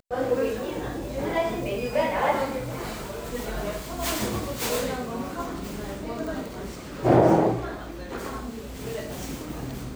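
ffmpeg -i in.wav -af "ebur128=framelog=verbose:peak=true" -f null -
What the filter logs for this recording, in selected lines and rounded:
Integrated loudness:
  I:         -27.8 LUFS
  Threshold: -37.8 LUFS
Loudness range:
  LRA:         4.6 LU
  Threshold: -47.5 LUFS
  LRA low:   -30.3 LUFS
  LRA high:  -25.7 LUFS
True peak:
  Peak:       -6.1 dBFS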